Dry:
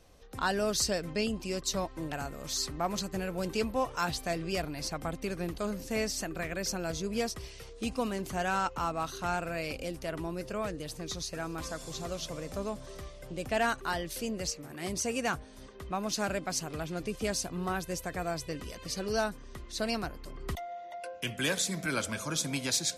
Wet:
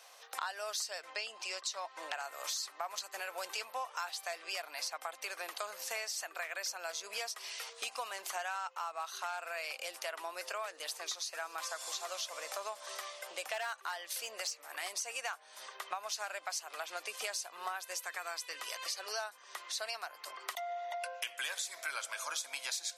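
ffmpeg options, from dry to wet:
ffmpeg -i in.wav -filter_complex "[0:a]asettb=1/sr,asplit=3[link_01][link_02][link_03];[link_01]atrim=end=1.024[link_04];[link_02]atrim=start=1.02:end=2.24,asetpts=PTS-STARTPTS,afade=type=in:duration=0.004:curve=qsin,afade=type=out:start_time=1.216:duration=0.004:curve=qsin,lowpass=7500[link_05];[link_03]atrim=start=2.236[link_06];[link_04][link_05]acrossfade=duration=0.004:curve1=hsin:curve2=qsin[link_07];[link_07][link_06]acrossfade=duration=0.004:curve1=qsin:curve2=hsin,asettb=1/sr,asplit=3[link_08][link_09][link_10];[link_08]atrim=end=9.294[link_11];[link_09]atrim=start=9.29:end=14.89,asetpts=PTS-STARTPTS,afade=type=in:duration=0.004:curve=qsin,afade=type=out:start_time=5.596:duration=0.004:curve=qsin,asoftclip=type=hard:threshold=-25dB[link_12];[link_10]atrim=start=14.886[link_13];[link_11][link_12]acrossfade=duration=0.004:curve1=hsin:curve2=qsin[link_14];[link_14][link_13]acrossfade=duration=0.004:curve1=qsin:curve2=hsin,asettb=1/sr,asplit=3[link_15][link_16][link_17];[link_15]atrim=end=17.994[link_18];[link_16]atrim=start=17.99:end=18.58,asetpts=PTS-STARTPTS,afade=type=in:duration=0.004:curve=qsin,afade=type=out:start_time=0.586:duration=0.004:curve=qsin,equalizer=frequency=660:width=2.1:gain=-8.5[link_19];[link_17]atrim=start=18.576[link_20];[link_18][link_19]acrossfade=duration=0.004:curve1=hsin:curve2=qsin[link_21];[link_21][link_20]acrossfade=duration=0.004:curve1=qsin:curve2=hsin,highpass=frequency=730:width=0.5412,highpass=frequency=730:width=1.3066,acompressor=threshold=-46dB:ratio=6,volume=9dB" out.wav

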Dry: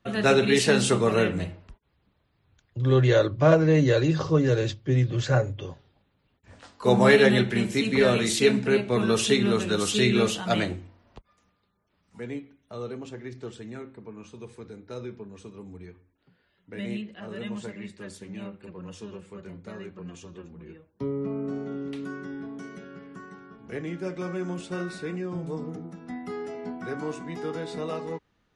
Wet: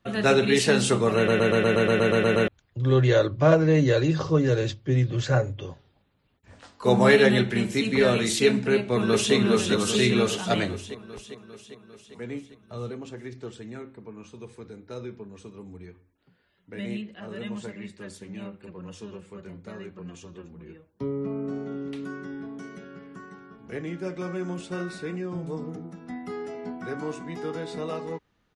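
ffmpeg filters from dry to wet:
ffmpeg -i in.wav -filter_complex "[0:a]asplit=2[link_01][link_02];[link_02]afade=type=in:start_time=8.72:duration=0.01,afade=type=out:start_time=9.34:duration=0.01,aecho=0:1:400|800|1200|1600|2000|2400|2800|3200|3600|4000:0.562341|0.365522|0.237589|0.154433|0.100381|0.0652479|0.0424112|0.0275673|0.0179187|0.0116472[link_03];[link_01][link_03]amix=inputs=2:normalize=0,asettb=1/sr,asplit=3[link_04][link_05][link_06];[link_04]atrim=end=12.274[link_07];[link_05]atrim=start=12.27:end=12.91,asetpts=PTS-STARTPTS,afade=type=in:duration=0.004:curve=qsin,afade=type=out:start_time=0.636:duration=0.004:curve=qsin,asubboost=boost=8.5:cutoff=220[link_08];[link_06]atrim=start=12.906[link_09];[link_07][link_08]acrossfade=duration=0.004:curve1=hsin:curve2=qsin[link_10];[link_10][link_09]acrossfade=duration=0.004:curve1=qsin:curve2=hsin,asplit=12[link_11][link_12][link_13][link_14][link_15][link_16][link_17][link_18][link_19][link_20][link_21][link_22];[link_11]atrim=end=1.282[link_23];[link_12]atrim=start=1.158:end=1.282[link_24];[link_13]atrim=start=1.158:end=1.282[link_25];[link_14]atrim=start=1.158:end=1.282[link_26];[link_15]atrim=start=1.158:end=1.282[link_27];[link_16]atrim=start=1.158:end=1.282[link_28];[link_17]atrim=start=1.158:end=1.282[link_29];[link_18]atrim=start=1.158:end=1.282[link_30];[link_19]atrim=start=1.158:end=1.282[link_31];[link_20]atrim=start=1.158:end=1.282[link_32];[link_21]atrim=start=1.158:end=1.282[link_33];[link_22]atrim=start=2.478[link_34];[link_23][link_24]acrossfade=duration=0.004:curve1=hsin:curve2=hsin[link_35];[link_35][link_25]acrossfade=duration=0.004:curve1=hsin:curve2=hsin[link_36];[link_36][link_26]acrossfade=duration=0.004:curve1=hsin:curve2=hsin[link_37];[link_37][link_27]acrossfade=duration=0.004:curve1=hsin:curve2=hsin[link_38];[link_38][link_28]acrossfade=duration=0.004:curve1=hsin:curve2=hsin[link_39];[link_39][link_29]acrossfade=duration=0.004:curve1=hsin:curve2=hsin[link_40];[link_40][link_30]acrossfade=duration=0.004:curve1=hsin:curve2=hsin[link_41];[link_41][link_31]acrossfade=duration=0.004:curve1=hsin:curve2=hsin[link_42];[link_42][link_32]acrossfade=duration=0.004:curve1=hsin:curve2=hsin[link_43];[link_43][link_33]acrossfade=duration=0.004:curve1=hsin:curve2=hsin[link_44];[link_44][link_34]acrossfade=duration=0.004:curve1=hsin:curve2=hsin" out.wav

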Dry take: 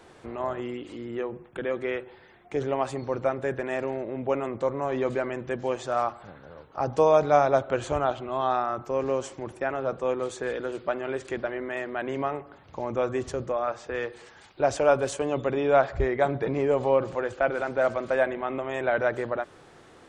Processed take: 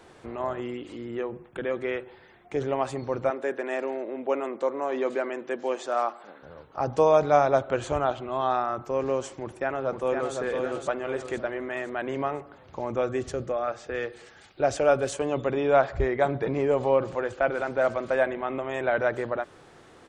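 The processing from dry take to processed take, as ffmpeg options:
ffmpeg -i in.wav -filter_complex "[0:a]asettb=1/sr,asplit=3[link_01][link_02][link_03];[link_01]atrim=end=3.304[link_04];[link_02]atrim=start=3.3:end=6.43,asetpts=PTS-STARTPTS,afade=type=in:duration=0.004:curve=qsin,afade=type=out:start_time=3.126:duration=0.004:curve=qsin,highpass=frequency=250:width=0.5412,highpass=frequency=250:width=1.3066[link_05];[link_03]atrim=start=6.426[link_06];[link_04][link_05]acrossfade=duration=0.004:curve1=hsin:curve2=qsin[link_07];[link_07][link_06]acrossfade=duration=0.004:curve1=qsin:curve2=hsin,asplit=2[link_08][link_09];[link_09]afade=type=in:start_time=9.41:duration=0.01,afade=type=out:start_time=10.36:duration=0.01,aecho=0:1:510|1020|1530|2040|2550|3060:0.595662|0.268048|0.120622|0.0542797|0.0244259|0.0109916[link_10];[link_08][link_10]amix=inputs=2:normalize=0,asettb=1/sr,asplit=3[link_11][link_12][link_13];[link_11]atrim=end=13.014[link_14];[link_12]atrim=start=13.01:end=15.14,asetpts=PTS-STARTPTS,afade=type=in:duration=0.004:curve=qsin,afade=type=out:start_time=2.126:duration=0.004:curve=qsin,equalizer=frequency=980:width_type=o:width=0.24:gain=-9[link_15];[link_13]atrim=start=15.136[link_16];[link_14][link_15]acrossfade=duration=0.004:curve1=hsin:curve2=qsin[link_17];[link_17][link_16]acrossfade=duration=0.004:curve1=qsin:curve2=hsin" out.wav

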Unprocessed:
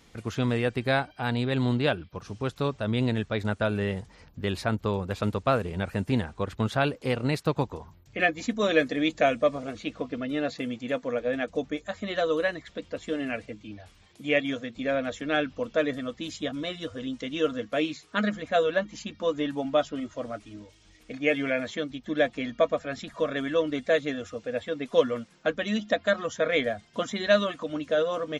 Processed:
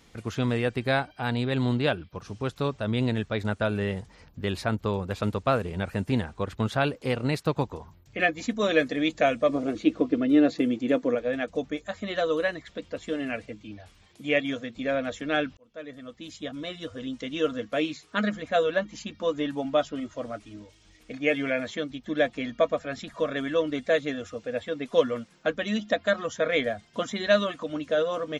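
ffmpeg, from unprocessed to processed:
ffmpeg -i in.wav -filter_complex "[0:a]asettb=1/sr,asplit=3[link_01][link_02][link_03];[link_01]atrim=end=9.494[link_04];[link_02]atrim=start=9.49:end=11.15,asetpts=PTS-STARTPTS,afade=type=in:duration=0.004:curve=qsin,afade=type=out:start_time=1.656:duration=0.004:curve=qsin,equalizer=frequency=330:width=1.7:gain=14[link_05];[link_03]atrim=start=11.146[link_06];[link_04][link_05]acrossfade=duration=0.004:curve1=hsin:curve2=qsin[link_07];[link_07][link_06]acrossfade=duration=0.004:curve1=qsin:curve2=hsin,asplit=2[link_08][link_09];[link_08]atrim=end=15.57,asetpts=PTS-STARTPTS,afade=type=out:start_time=15.566:duration=0.004:curve=hsin[link_10];[link_09]atrim=start=15.57,asetpts=PTS-STARTPTS,afade=type=in:duration=2.06:curve=qsin[link_11];[link_10][link_11]concat=n=2:v=0:a=1" out.wav

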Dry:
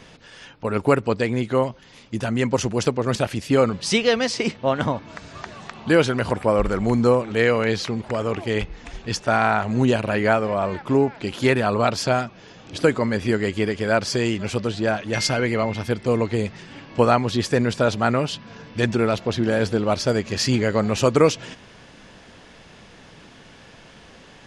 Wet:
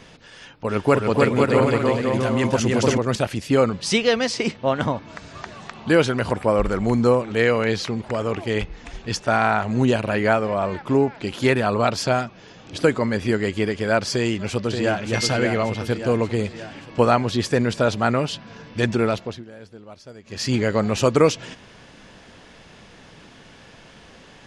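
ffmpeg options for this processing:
ffmpeg -i in.wav -filter_complex "[0:a]asplit=3[link_01][link_02][link_03];[link_01]afade=type=out:start_time=0.68:duration=0.02[link_04];[link_02]aecho=1:1:300|510|657|759.9|831.9|882.4:0.794|0.631|0.501|0.398|0.316|0.251,afade=type=in:start_time=0.68:duration=0.02,afade=type=out:start_time=2.97:duration=0.02[link_05];[link_03]afade=type=in:start_time=2.97:duration=0.02[link_06];[link_04][link_05][link_06]amix=inputs=3:normalize=0,asplit=2[link_07][link_08];[link_08]afade=type=in:start_time=14.12:duration=0.01,afade=type=out:start_time=15.05:duration=0.01,aecho=0:1:580|1160|1740|2320|2900|3480|4060:0.530884|0.291986|0.160593|0.0883259|0.0485792|0.0267186|0.0146952[link_09];[link_07][link_09]amix=inputs=2:normalize=0,asplit=3[link_10][link_11][link_12];[link_10]atrim=end=19.44,asetpts=PTS-STARTPTS,afade=type=out:start_time=19.08:duration=0.36:silence=0.0891251[link_13];[link_11]atrim=start=19.44:end=20.22,asetpts=PTS-STARTPTS,volume=-21dB[link_14];[link_12]atrim=start=20.22,asetpts=PTS-STARTPTS,afade=type=in:duration=0.36:silence=0.0891251[link_15];[link_13][link_14][link_15]concat=n=3:v=0:a=1" out.wav

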